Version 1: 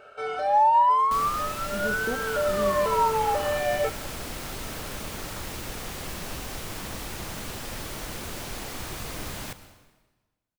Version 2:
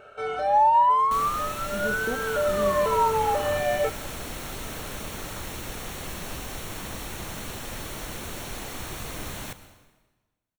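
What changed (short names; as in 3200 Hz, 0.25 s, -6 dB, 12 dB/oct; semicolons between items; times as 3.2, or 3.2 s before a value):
first sound: add low shelf 210 Hz +8.5 dB; master: add Butterworth band-stop 4900 Hz, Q 8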